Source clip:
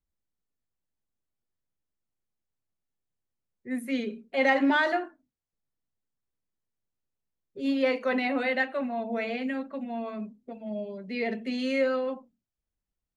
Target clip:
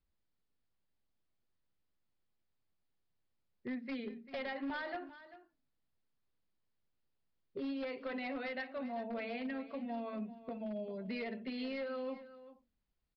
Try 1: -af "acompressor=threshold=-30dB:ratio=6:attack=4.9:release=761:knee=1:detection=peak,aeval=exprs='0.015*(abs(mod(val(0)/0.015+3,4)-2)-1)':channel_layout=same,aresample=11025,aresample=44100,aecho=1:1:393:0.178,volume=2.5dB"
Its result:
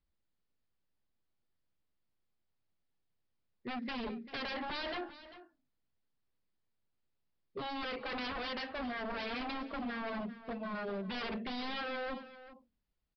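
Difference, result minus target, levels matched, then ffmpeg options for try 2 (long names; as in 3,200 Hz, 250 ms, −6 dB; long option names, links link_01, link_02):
downward compressor: peak gain reduction −7.5 dB
-af "acompressor=threshold=-39dB:ratio=6:attack=4.9:release=761:knee=1:detection=peak,aeval=exprs='0.015*(abs(mod(val(0)/0.015+3,4)-2)-1)':channel_layout=same,aresample=11025,aresample=44100,aecho=1:1:393:0.178,volume=2.5dB"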